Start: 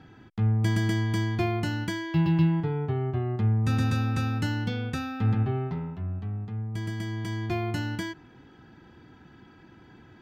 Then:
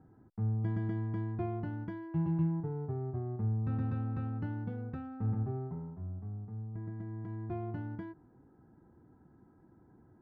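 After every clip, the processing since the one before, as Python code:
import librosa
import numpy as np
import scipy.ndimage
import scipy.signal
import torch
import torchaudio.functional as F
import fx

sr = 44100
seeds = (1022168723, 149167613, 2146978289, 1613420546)

y = fx.wiener(x, sr, points=15)
y = scipy.signal.sosfilt(scipy.signal.butter(2, 1100.0, 'lowpass', fs=sr, output='sos'), y)
y = y * 10.0 ** (-8.5 / 20.0)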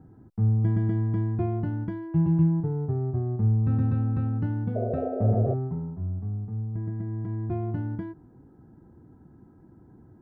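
y = fx.low_shelf(x, sr, hz=460.0, db=8.0)
y = fx.spec_paint(y, sr, seeds[0], shape='noise', start_s=4.75, length_s=0.79, low_hz=360.0, high_hz=730.0, level_db=-33.0)
y = y * 10.0 ** (2.5 / 20.0)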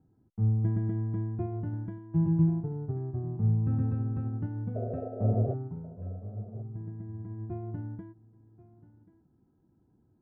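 y = fx.lowpass(x, sr, hz=1300.0, slope=6)
y = y + 10.0 ** (-13.5 / 20.0) * np.pad(y, (int(1084 * sr / 1000.0), 0))[:len(y)]
y = fx.upward_expand(y, sr, threshold_db=-44.0, expansion=1.5)
y = y * 10.0 ** (-2.0 / 20.0)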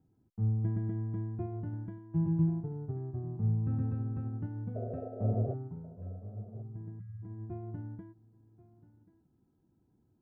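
y = fx.spec_erase(x, sr, start_s=6.99, length_s=0.24, low_hz=210.0, high_hz=1100.0)
y = y * 10.0 ** (-4.0 / 20.0)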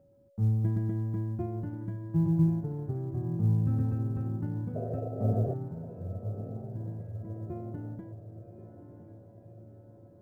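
y = x + 10.0 ** (-65.0 / 20.0) * np.sin(2.0 * np.pi * 560.0 * np.arange(len(x)) / sr)
y = fx.echo_diffused(y, sr, ms=1139, feedback_pct=55, wet_db=-11.5)
y = fx.quant_float(y, sr, bits=6)
y = y * 10.0 ** (3.5 / 20.0)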